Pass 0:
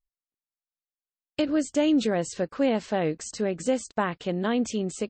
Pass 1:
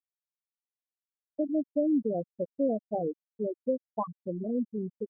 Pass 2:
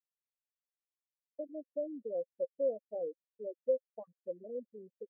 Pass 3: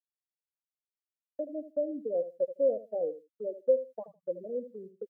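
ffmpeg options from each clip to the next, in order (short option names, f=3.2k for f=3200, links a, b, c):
-af "afftfilt=real='re*gte(hypot(re,im),0.282)':imag='im*gte(hypot(re,im),0.282)':win_size=1024:overlap=0.75,crystalizer=i=7.5:c=0,volume=-4.5dB"
-filter_complex "[0:a]asplit=3[a][b][c];[a]bandpass=f=530:t=q:w=8,volume=0dB[d];[b]bandpass=f=1.84k:t=q:w=8,volume=-6dB[e];[c]bandpass=f=2.48k:t=q:w=8,volume=-9dB[f];[d][e][f]amix=inputs=3:normalize=0"
-filter_complex "[0:a]agate=range=-33dB:threshold=-51dB:ratio=3:detection=peak,asplit=2[a][b];[b]adelay=78,lowpass=f=870:p=1,volume=-11.5dB,asplit=2[c][d];[d]adelay=78,lowpass=f=870:p=1,volume=0.18[e];[a][c][e]amix=inputs=3:normalize=0,volume=6dB"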